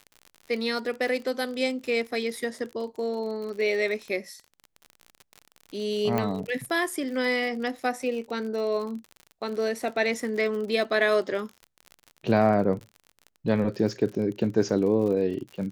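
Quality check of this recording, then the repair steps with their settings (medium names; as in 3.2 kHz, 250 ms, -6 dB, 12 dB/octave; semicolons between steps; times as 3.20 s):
crackle 54 per s -34 dBFS
6.18 s: pop -14 dBFS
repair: de-click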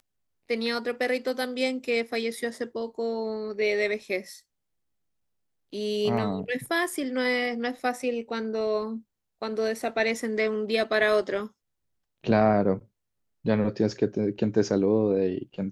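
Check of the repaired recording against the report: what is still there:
6.18 s: pop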